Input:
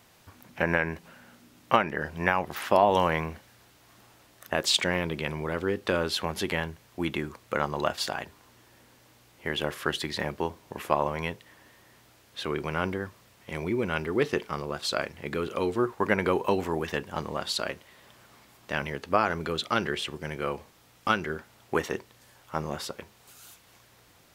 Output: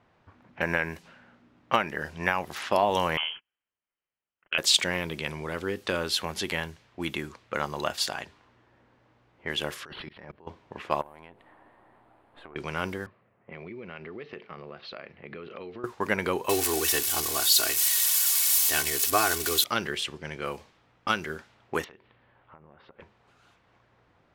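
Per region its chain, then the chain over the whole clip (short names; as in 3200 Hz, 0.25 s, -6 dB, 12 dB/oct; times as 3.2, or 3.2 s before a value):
3.17–4.58 gate -49 dBFS, range -30 dB + inverted band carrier 3200 Hz
9.85–10.47 negative-ratio compressor -38 dBFS + auto swell 0.221 s + decimation joined by straight lines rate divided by 6×
11.01–12.56 half-wave gain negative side -7 dB + EQ curve 140 Hz 0 dB, 320 Hz +7 dB, 470 Hz +4 dB, 780 Hz +12 dB, 1500 Hz +3 dB, 4200 Hz -3 dB, 5900 Hz -13 dB, 9200 Hz +11 dB + compressor 16:1, threshold -39 dBFS
13.06–15.84 speaker cabinet 130–4200 Hz, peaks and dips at 290 Hz -5 dB, 940 Hz -6 dB, 1500 Hz -4 dB, 3400 Hz -6 dB + low-pass opened by the level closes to 1300 Hz, open at -28.5 dBFS + compressor 5:1, threshold -34 dBFS
16.49–19.64 switching spikes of -20.5 dBFS + comb 2.7 ms, depth 82%
21.84–23 LPF 3500 Hz 24 dB/oct + compressor 20:1, threshold -44 dBFS
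whole clip: low-pass opened by the level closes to 1300 Hz, open at -26 dBFS; high shelf 2400 Hz +8.5 dB; gain -3.5 dB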